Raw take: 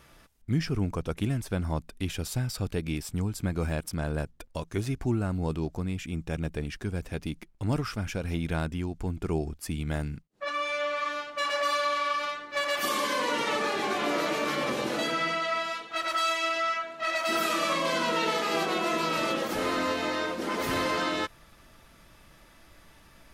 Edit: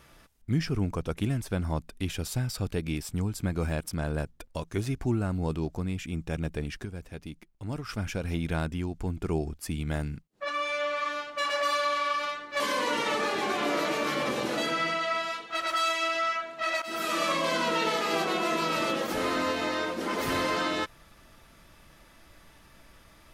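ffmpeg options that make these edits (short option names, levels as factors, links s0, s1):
-filter_complex "[0:a]asplit=5[s0][s1][s2][s3][s4];[s0]atrim=end=6.852[s5];[s1]atrim=start=6.848:end=7.892,asetpts=PTS-STARTPTS,volume=0.447[s6];[s2]atrim=start=7.888:end=12.602[s7];[s3]atrim=start=13.008:end=17.23,asetpts=PTS-STARTPTS,afade=t=out:st=4.218:d=0.004:c=hsin:silence=0.211349[s8];[s4]atrim=start=17.23,asetpts=PTS-STARTPTS,afade=t=in:d=0.37:silence=0.211349[s9];[s5][s6]acrossfade=d=0.004:c1=hsin:c2=hsin[s10];[s10][s7]acrossfade=d=0.004:c1=hsin:c2=hsin[s11];[s8][s9]concat=n=2:v=0:a=1[s12];[s11][s12]acrossfade=d=0.004:c1=hsin:c2=hsin"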